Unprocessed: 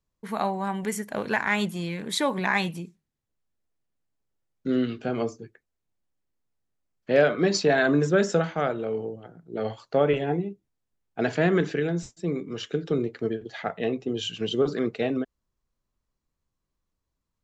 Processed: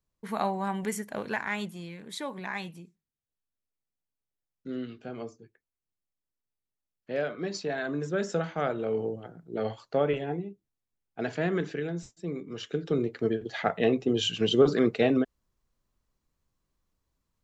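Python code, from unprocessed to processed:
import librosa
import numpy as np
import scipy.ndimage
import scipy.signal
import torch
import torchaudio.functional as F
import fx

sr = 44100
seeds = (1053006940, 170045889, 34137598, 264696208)

y = fx.gain(x, sr, db=fx.line((0.83, -2.0), (1.98, -11.0), (7.91, -11.0), (9.13, 2.0), (10.34, -6.5), (12.3, -6.5), (13.61, 3.0)))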